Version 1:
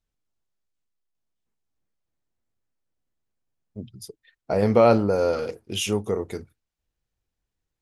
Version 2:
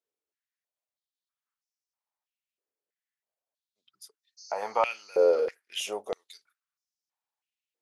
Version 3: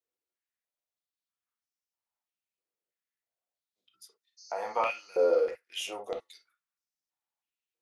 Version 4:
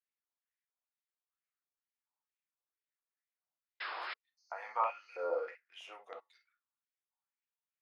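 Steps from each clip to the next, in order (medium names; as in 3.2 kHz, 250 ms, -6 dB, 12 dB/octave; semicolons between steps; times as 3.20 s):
spectral replace 4.41–5.11 s, 3.7–7.4 kHz after; step-sequenced high-pass 3.1 Hz 430–5400 Hz; trim -7.5 dB
reverberation, pre-delay 3 ms, DRR 2.5 dB; trim -4 dB
painted sound noise, 3.80–4.14 s, 320–5300 Hz -34 dBFS; LFO band-pass sine 2.2 Hz 930–2200 Hz; trim +1 dB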